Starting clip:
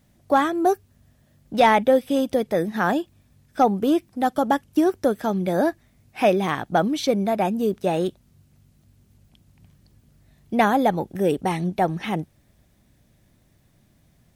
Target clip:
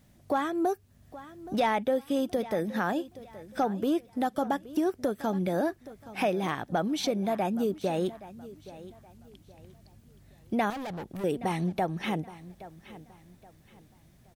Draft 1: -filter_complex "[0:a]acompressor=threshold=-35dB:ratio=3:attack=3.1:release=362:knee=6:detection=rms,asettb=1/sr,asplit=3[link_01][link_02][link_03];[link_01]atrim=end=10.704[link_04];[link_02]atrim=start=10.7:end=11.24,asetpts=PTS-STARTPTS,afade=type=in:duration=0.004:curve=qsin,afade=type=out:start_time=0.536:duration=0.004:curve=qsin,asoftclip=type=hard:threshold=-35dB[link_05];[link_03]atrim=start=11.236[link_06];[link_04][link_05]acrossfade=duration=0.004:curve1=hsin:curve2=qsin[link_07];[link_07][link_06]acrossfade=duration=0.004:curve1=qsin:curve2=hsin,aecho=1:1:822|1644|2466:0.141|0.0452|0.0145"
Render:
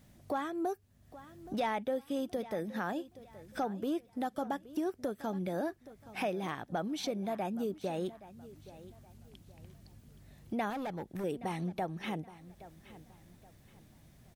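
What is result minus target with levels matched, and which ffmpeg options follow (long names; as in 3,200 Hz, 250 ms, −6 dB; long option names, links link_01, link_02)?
downward compressor: peak gain reduction +7 dB
-filter_complex "[0:a]acompressor=threshold=-24.5dB:ratio=3:attack=3.1:release=362:knee=6:detection=rms,asettb=1/sr,asplit=3[link_01][link_02][link_03];[link_01]atrim=end=10.704[link_04];[link_02]atrim=start=10.7:end=11.24,asetpts=PTS-STARTPTS,afade=type=in:duration=0.004:curve=qsin,afade=type=out:start_time=0.536:duration=0.004:curve=qsin,asoftclip=type=hard:threshold=-35dB[link_05];[link_03]atrim=start=11.236[link_06];[link_04][link_05]acrossfade=duration=0.004:curve1=hsin:curve2=qsin[link_07];[link_07][link_06]acrossfade=duration=0.004:curve1=qsin:curve2=hsin,aecho=1:1:822|1644|2466:0.141|0.0452|0.0145"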